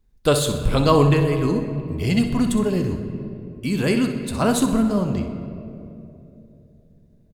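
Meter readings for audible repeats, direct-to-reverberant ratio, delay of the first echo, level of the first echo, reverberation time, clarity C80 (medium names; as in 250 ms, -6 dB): 2, 5.0 dB, 63 ms, -10.5 dB, 2.9 s, 9.0 dB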